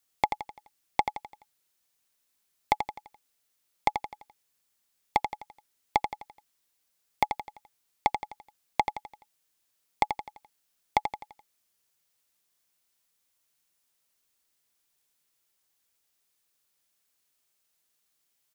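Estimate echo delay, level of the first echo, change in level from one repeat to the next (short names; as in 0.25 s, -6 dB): 85 ms, -7.5 dB, -7.0 dB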